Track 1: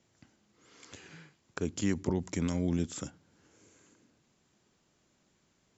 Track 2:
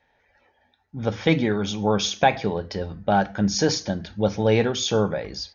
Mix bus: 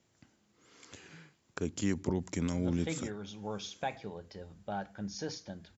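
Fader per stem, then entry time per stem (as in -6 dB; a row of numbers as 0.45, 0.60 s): -1.5, -18.0 dB; 0.00, 1.60 s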